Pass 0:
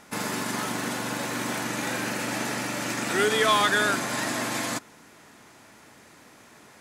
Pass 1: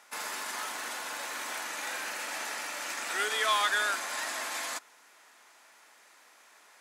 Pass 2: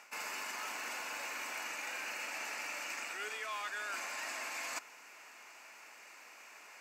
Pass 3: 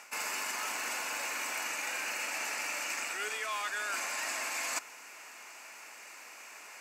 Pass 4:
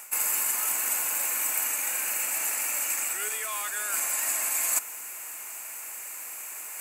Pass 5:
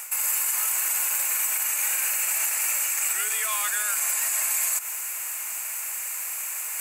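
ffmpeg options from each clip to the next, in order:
ffmpeg -i in.wav -af "highpass=750,volume=-4.5dB" out.wav
ffmpeg -i in.wav -af "superequalizer=12b=2:13b=0.501:16b=0.398,areverse,acompressor=threshold=-41dB:ratio=8,areverse,volume=2.5dB" out.wav
ffmpeg -i in.wav -af "equalizer=frequency=9700:width_type=o:width=1.1:gain=6,volume=4.5dB" out.wav
ffmpeg -i in.wav -af "areverse,acompressor=mode=upward:threshold=-41dB:ratio=2.5,areverse,aexciter=amount=10.3:drive=3.2:freq=7600" out.wav
ffmpeg -i in.wav -af "highpass=frequency=1100:poles=1,alimiter=limit=-22.5dB:level=0:latency=1:release=84,volume=7.5dB" out.wav

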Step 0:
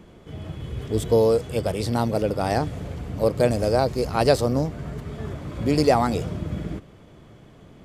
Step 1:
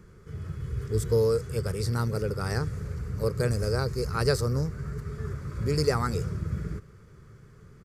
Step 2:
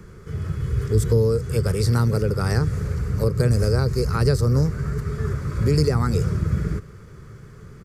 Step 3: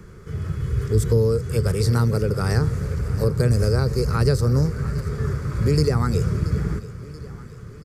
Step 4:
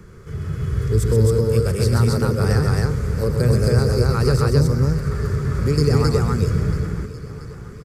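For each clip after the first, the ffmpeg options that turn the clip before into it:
ffmpeg -i in.wav -af "firequalizer=gain_entry='entry(130,0);entry(290,-15);entry(410,-2);entry(670,-20);entry(1300,1);entry(3200,-16);entry(4700,-2)':delay=0.05:min_phase=1" out.wav
ffmpeg -i in.wav -filter_complex "[0:a]acrossover=split=320[link_01][link_02];[link_02]acompressor=threshold=-34dB:ratio=5[link_03];[link_01][link_03]amix=inputs=2:normalize=0,volume=9dB" out.wav
ffmpeg -i in.wav -af "aecho=1:1:681|1362|2043|2724|3405:0.15|0.0808|0.0436|0.0236|0.0127" out.wav
ffmpeg -i in.wav -af "aecho=1:1:128.3|268.2:0.501|0.891" out.wav

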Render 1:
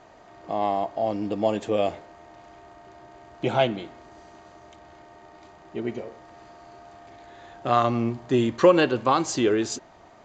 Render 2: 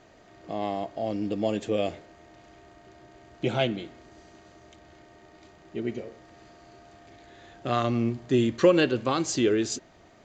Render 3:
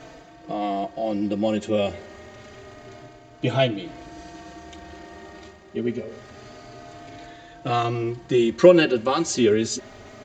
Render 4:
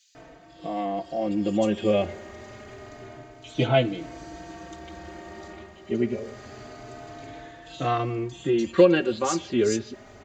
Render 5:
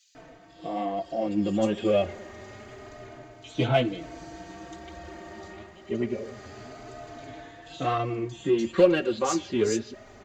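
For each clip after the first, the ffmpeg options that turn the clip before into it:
ffmpeg -i in.wav -af "equalizer=frequency=920:width=1.3:gain=-10" out.wav
ffmpeg -i in.wav -filter_complex "[0:a]areverse,acompressor=mode=upward:threshold=-37dB:ratio=2.5,areverse,asplit=2[link_01][link_02];[link_02]adelay=4.1,afreqshift=0.27[link_03];[link_01][link_03]amix=inputs=2:normalize=1,volume=7dB" out.wav
ffmpeg -i in.wav -filter_complex "[0:a]dynaudnorm=framelen=460:gausssize=5:maxgain=4.5dB,acrossover=split=3600[link_01][link_02];[link_01]adelay=150[link_03];[link_03][link_02]amix=inputs=2:normalize=0,volume=-3.5dB" out.wav
ffmpeg -i in.wav -filter_complex "[0:a]asplit=2[link_01][link_02];[link_02]asoftclip=type=hard:threshold=-19.5dB,volume=-8dB[link_03];[link_01][link_03]amix=inputs=2:normalize=0,flanger=delay=1.5:depth=9.3:regen=52:speed=1:shape=sinusoidal" out.wav

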